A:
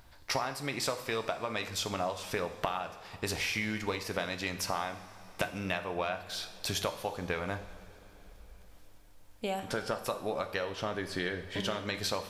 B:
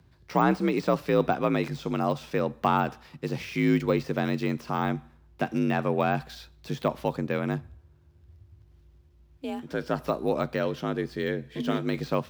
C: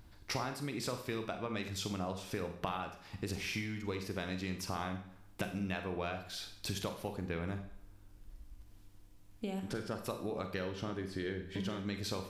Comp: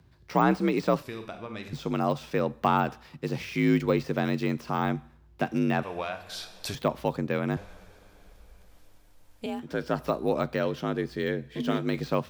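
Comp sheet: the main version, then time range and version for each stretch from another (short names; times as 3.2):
B
1.03–1.73 from C
5.83–6.75 from A
7.57–9.46 from A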